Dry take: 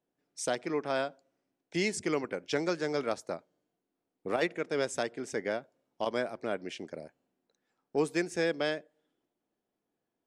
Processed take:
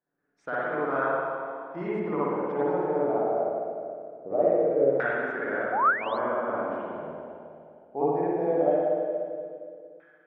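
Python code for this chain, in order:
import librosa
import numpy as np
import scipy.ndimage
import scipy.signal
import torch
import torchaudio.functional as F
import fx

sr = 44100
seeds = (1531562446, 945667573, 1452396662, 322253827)

y = fx.rev_spring(x, sr, rt60_s=2.5, pass_ms=(51, 58), chirp_ms=60, drr_db=-9.5)
y = fx.spec_paint(y, sr, seeds[0], shape='rise', start_s=5.72, length_s=0.46, low_hz=690.0, high_hz=4400.0, level_db=-23.0)
y = fx.filter_lfo_lowpass(y, sr, shape='saw_down', hz=0.2, low_hz=540.0, high_hz=1600.0, q=4.1)
y = F.gain(torch.from_numpy(y), -7.5).numpy()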